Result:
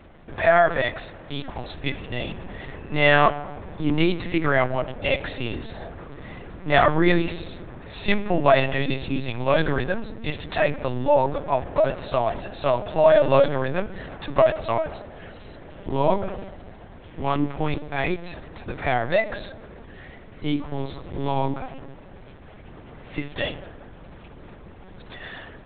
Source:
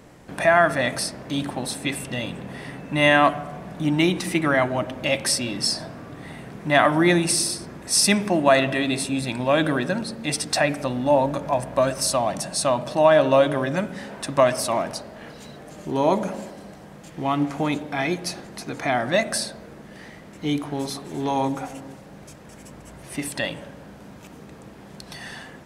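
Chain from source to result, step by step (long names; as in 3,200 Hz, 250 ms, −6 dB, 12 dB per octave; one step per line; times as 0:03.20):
0:00.82–0:01.73: low-shelf EQ 300 Hz −9.5 dB
linear-prediction vocoder at 8 kHz pitch kept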